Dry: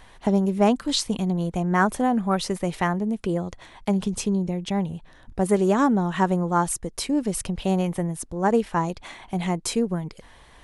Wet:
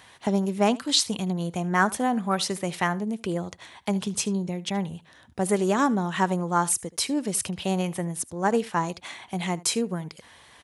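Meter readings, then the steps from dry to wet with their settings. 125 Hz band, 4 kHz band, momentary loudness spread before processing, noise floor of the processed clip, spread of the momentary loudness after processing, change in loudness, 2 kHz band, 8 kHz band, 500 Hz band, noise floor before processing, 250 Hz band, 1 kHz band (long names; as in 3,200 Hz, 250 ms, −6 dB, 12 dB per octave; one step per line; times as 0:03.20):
−4.0 dB, +3.0 dB, 9 LU, −54 dBFS, 10 LU, −2.0 dB, +1.0 dB, +4.0 dB, −3.0 dB, −51 dBFS, −3.5 dB, −1.5 dB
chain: high-pass filter 77 Hz 24 dB per octave
tilt shelving filter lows −4 dB, about 1,300 Hz
single-tap delay 76 ms −21 dB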